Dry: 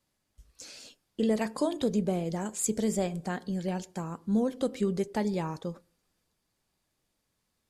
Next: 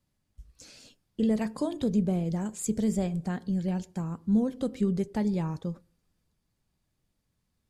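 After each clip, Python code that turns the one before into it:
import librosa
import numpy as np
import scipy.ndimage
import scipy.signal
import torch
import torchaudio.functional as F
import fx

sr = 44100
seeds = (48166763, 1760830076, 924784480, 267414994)

y = fx.bass_treble(x, sr, bass_db=11, treble_db=-1)
y = F.gain(torch.from_numpy(y), -4.0).numpy()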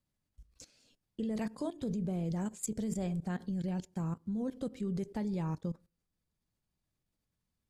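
y = fx.level_steps(x, sr, step_db=17)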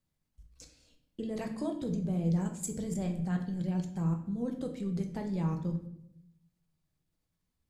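y = fx.room_shoebox(x, sr, seeds[0], volume_m3=170.0, walls='mixed', distance_m=0.6)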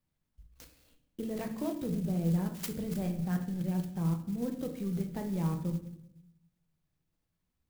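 y = fx.clock_jitter(x, sr, seeds[1], jitter_ms=0.043)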